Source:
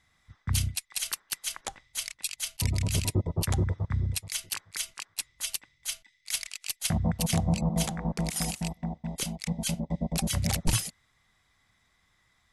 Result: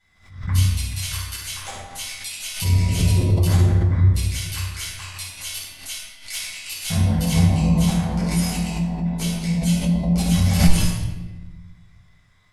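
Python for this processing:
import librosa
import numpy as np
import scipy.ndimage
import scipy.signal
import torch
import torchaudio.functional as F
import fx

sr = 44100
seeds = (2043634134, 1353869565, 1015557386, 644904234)

p1 = 10.0 ** (-23.5 / 20.0) * np.tanh(x / 10.0 ** (-23.5 / 20.0))
p2 = x + (p1 * 10.0 ** (-6.0 / 20.0))
p3 = fx.comb_fb(p2, sr, f0_hz=88.0, decay_s=0.46, harmonics='all', damping=0.0, mix_pct=70)
p4 = fx.room_shoebox(p3, sr, seeds[0], volume_m3=690.0, walls='mixed', distance_m=7.3)
p5 = fx.pre_swell(p4, sr, db_per_s=110.0)
y = p5 * 10.0 ** (-4.0 / 20.0)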